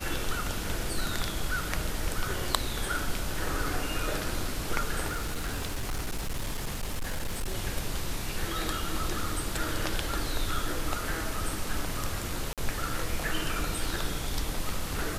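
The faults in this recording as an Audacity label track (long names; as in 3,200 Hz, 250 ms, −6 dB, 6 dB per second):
5.070000	7.550000	clipping −27.5 dBFS
12.530000	12.580000	drop-out 47 ms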